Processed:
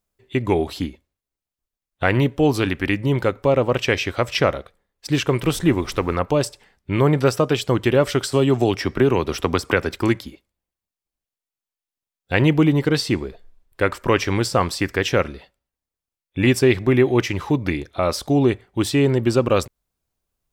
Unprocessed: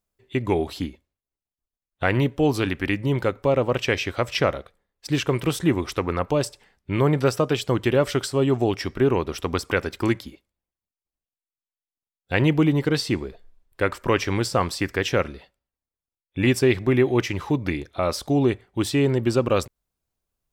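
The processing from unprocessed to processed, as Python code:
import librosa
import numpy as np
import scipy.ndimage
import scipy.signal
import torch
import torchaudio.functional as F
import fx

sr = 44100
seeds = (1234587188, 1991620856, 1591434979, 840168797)

y = fx.dmg_noise_colour(x, sr, seeds[0], colour='brown', level_db=-40.0, at=(5.42, 6.15), fade=0.02)
y = fx.band_squash(y, sr, depth_pct=70, at=(8.32, 9.95))
y = F.gain(torch.from_numpy(y), 3.0).numpy()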